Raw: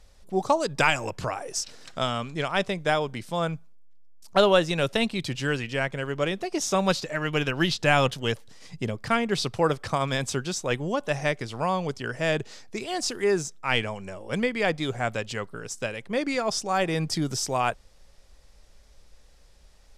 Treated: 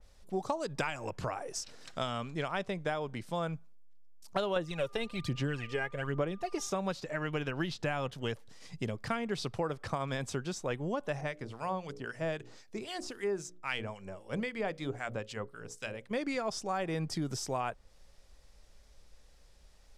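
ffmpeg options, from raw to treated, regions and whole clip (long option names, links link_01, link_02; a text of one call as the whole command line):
ffmpeg -i in.wav -filter_complex "[0:a]asettb=1/sr,asplit=3[link_01][link_02][link_03];[link_01]atrim=end=4.564[link_04];[link_02]atrim=start=4.56:end=6.7,asetpts=PTS-STARTPTS,afade=type=in:duration=0.004:curve=qsin,afade=type=out:start_time=2.136:duration=0.004:curve=qsin,aphaser=in_gain=1:out_gain=1:delay=2.5:decay=0.61:speed=1.2:type=sinusoidal,aeval=exprs='val(0)+0.00447*sin(2*PI*1200*n/s)':channel_layout=same[link_05];[link_03]atrim=start=6.696[link_06];[link_04][link_05]acrossfade=duration=0.004:curve1=hsin:curve2=qsin[link_07];[link_07][link_06]acrossfade=duration=0.004:curve1=qsin:curve2=hsin,asettb=1/sr,asplit=3[link_08][link_09][link_10];[link_08]atrim=end=11.214[link_11];[link_09]atrim=start=11.21:end=16.11,asetpts=PTS-STARTPTS,afade=type=in:duration=0.004:curve=qsin,afade=type=out:start_time=4.896:duration=0.004:curve=qsin,bandreject=frequency=60:width_type=h:width=6,bandreject=frequency=120:width_type=h:width=6,bandreject=frequency=180:width_type=h:width=6,bandreject=frequency=240:width_type=h:width=6,bandreject=frequency=300:width_type=h:width=6,bandreject=frequency=360:width_type=h:width=6,bandreject=frequency=420:width_type=h:width=6,bandreject=frequency=480:width_type=h:width=6,bandreject=frequency=540:width_type=h:width=6,bandreject=frequency=600:width_type=h:width=6,acrossover=split=1300[link_12][link_13];[link_12]aeval=exprs='val(0)*(1-0.7/2+0.7/2*cos(2*PI*3.8*n/s))':channel_layout=same[link_14];[link_13]aeval=exprs='val(0)*(1-0.7/2-0.7/2*cos(2*PI*3.8*n/s))':channel_layout=same[link_15];[link_14][link_15]amix=inputs=2:normalize=0[link_16];[link_10]atrim=start=16.106[link_17];[link_11][link_16]acrossfade=duration=0.004:curve1=hsin:curve2=qsin[link_18];[link_18][link_17]acrossfade=duration=0.004:curve1=qsin:curve2=hsin,acompressor=threshold=-25dB:ratio=6,adynamicequalizer=threshold=0.00501:dfrequency=2300:dqfactor=0.7:tfrequency=2300:tqfactor=0.7:attack=5:release=100:ratio=0.375:range=3.5:mode=cutabove:tftype=highshelf,volume=-4.5dB" out.wav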